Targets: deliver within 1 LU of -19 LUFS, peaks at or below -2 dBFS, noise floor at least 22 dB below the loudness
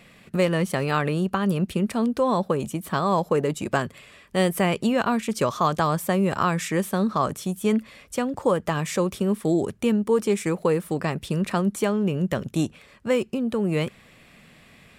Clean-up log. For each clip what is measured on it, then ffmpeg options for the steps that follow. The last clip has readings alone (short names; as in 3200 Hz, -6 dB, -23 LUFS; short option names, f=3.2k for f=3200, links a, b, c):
loudness -24.5 LUFS; peak -9.0 dBFS; loudness target -19.0 LUFS
-> -af "volume=5.5dB"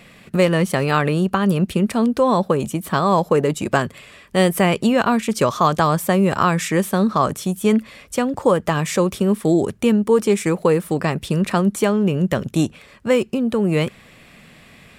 loudness -19.0 LUFS; peak -3.5 dBFS; noise floor -47 dBFS